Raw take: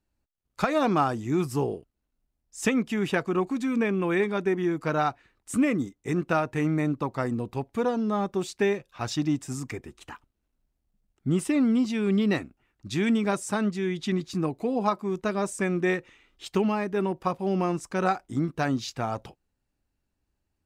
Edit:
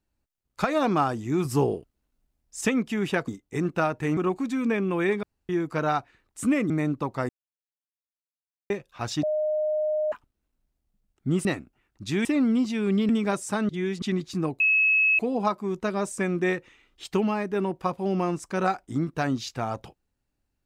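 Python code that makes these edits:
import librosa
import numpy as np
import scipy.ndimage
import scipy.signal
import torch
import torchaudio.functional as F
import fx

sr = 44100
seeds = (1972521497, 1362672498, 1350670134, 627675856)

y = fx.edit(x, sr, fx.clip_gain(start_s=1.45, length_s=1.16, db=4.0),
    fx.room_tone_fill(start_s=4.34, length_s=0.26),
    fx.move(start_s=5.81, length_s=0.89, to_s=3.28),
    fx.silence(start_s=7.29, length_s=1.41),
    fx.bleep(start_s=9.23, length_s=0.89, hz=613.0, db=-22.5),
    fx.move(start_s=12.29, length_s=0.8, to_s=11.45),
    fx.reverse_span(start_s=13.69, length_s=0.33),
    fx.insert_tone(at_s=14.6, length_s=0.59, hz=2580.0, db=-17.5), tone=tone)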